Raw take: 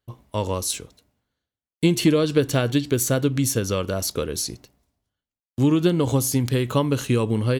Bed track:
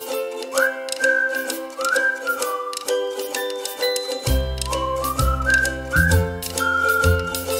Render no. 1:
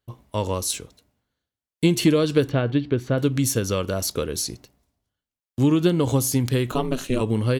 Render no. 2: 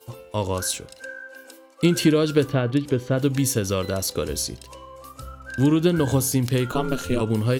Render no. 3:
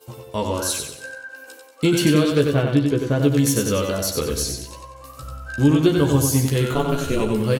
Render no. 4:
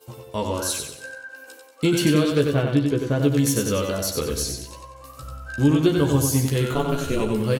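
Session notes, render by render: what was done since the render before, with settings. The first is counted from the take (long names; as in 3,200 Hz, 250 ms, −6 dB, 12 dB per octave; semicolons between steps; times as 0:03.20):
0:02.49–0:03.18: high-frequency loss of the air 350 metres; 0:06.71–0:07.21: ring modulation 130 Hz
mix in bed track −19 dB
double-tracking delay 14 ms −4.5 dB; repeating echo 93 ms, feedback 40%, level −5 dB
level −2 dB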